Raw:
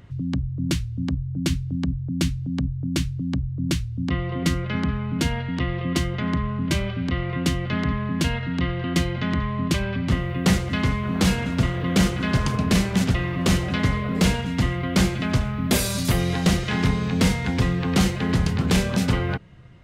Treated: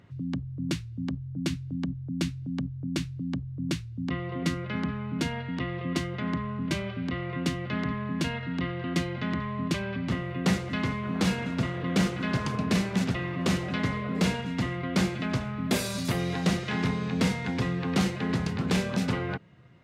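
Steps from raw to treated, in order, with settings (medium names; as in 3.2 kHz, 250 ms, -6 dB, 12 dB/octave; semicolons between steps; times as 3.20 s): high-pass 130 Hz 12 dB/octave; treble shelf 7.7 kHz -9 dB; band-stop 3.1 kHz, Q 28; trim -4.5 dB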